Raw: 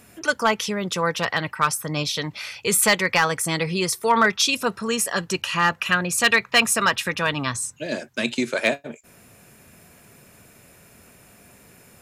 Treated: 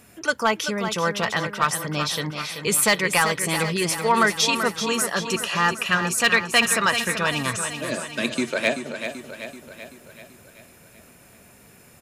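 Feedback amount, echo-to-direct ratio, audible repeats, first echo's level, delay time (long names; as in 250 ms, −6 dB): 56%, −7.0 dB, 6, −8.5 dB, 384 ms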